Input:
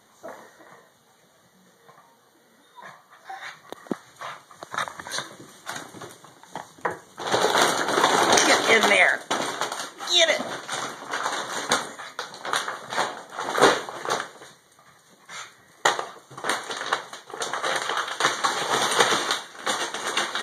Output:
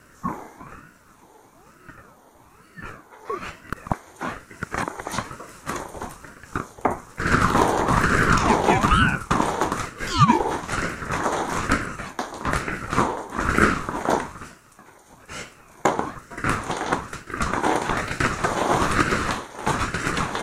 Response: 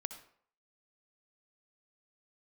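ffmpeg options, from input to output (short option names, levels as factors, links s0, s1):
-filter_complex "[0:a]acrossover=split=710|4900[s0][s1][s2];[s0]acompressor=threshold=0.0447:ratio=4[s3];[s1]acompressor=threshold=0.0398:ratio=4[s4];[s2]acompressor=threshold=0.00891:ratio=4[s5];[s3][s4][s5]amix=inputs=3:normalize=0,equalizer=f=630:t=o:w=0.67:g=10,equalizer=f=1600:t=o:w=0.67:g=-4,equalizer=f=4000:t=o:w=0.67:g=-9,aeval=exprs='val(0)*sin(2*PI*520*n/s+520*0.6/1.1*sin(2*PI*1.1*n/s))':c=same,volume=2.24"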